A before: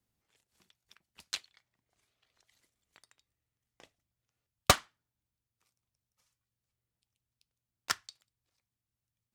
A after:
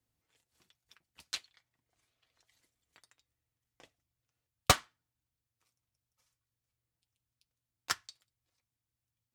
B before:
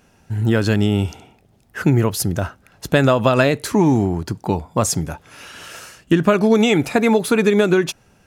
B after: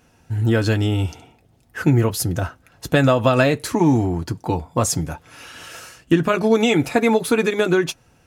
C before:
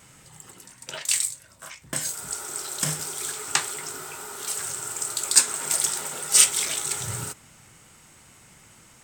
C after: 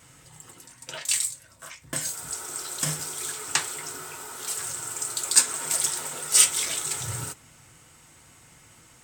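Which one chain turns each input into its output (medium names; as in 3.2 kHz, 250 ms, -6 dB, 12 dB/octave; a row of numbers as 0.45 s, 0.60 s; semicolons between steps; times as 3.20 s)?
comb of notches 200 Hz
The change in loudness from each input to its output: -1.5 LU, -1.5 LU, -1.0 LU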